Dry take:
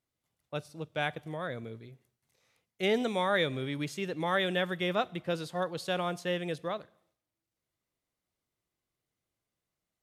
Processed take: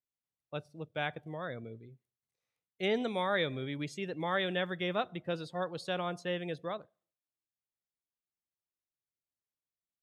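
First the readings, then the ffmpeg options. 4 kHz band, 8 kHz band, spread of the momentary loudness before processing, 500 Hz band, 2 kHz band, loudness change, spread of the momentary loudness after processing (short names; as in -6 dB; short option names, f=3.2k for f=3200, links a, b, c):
-3.0 dB, -7.5 dB, 12 LU, -3.0 dB, -3.0 dB, -3.0 dB, 12 LU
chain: -af "afftdn=nr=15:nf=-50,volume=-3dB"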